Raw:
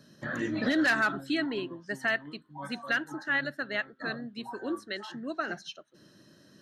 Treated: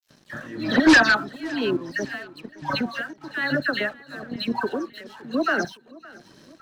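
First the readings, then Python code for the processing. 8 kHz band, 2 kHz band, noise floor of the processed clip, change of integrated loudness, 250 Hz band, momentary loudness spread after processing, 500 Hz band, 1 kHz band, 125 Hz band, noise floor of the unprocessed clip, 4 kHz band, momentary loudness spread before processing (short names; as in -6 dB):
+11.0 dB, +7.0 dB, -56 dBFS, +8.5 dB, +9.0 dB, 21 LU, +8.0 dB, +8.5 dB, +7.5 dB, -60 dBFS, +8.5 dB, 14 LU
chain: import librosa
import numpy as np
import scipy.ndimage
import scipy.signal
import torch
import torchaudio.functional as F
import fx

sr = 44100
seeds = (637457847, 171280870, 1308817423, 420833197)

p1 = scipy.signal.sosfilt(scipy.signal.cheby1(6, 1.0, 6200.0, 'lowpass', fs=sr, output='sos'), x)
p2 = fx.peak_eq(p1, sr, hz=2100.0, db=-3.0, octaves=0.43)
p3 = fx.level_steps(p2, sr, step_db=13)
p4 = fx.dispersion(p3, sr, late='lows', ms=104.0, hz=2400.0)
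p5 = fx.fold_sine(p4, sr, drive_db=7, ceiling_db=-17.0)
p6 = p5 * (1.0 - 0.85 / 2.0 + 0.85 / 2.0 * np.cos(2.0 * np.pi * 1.1 * (np.arange(len(p5)) / sr)))
p7 = np.sign(p6) * np.maximum(np.abs(p6) - 10.0 ** (-58.0 / 20.0), 0.0)
p8 = p7 + fx.echo_feedback(p7, sr, ms=564, feedback_pct=50, wet_db=-22, dry=0)
y = p8 * 10.0 ** (8.0 / 20.0)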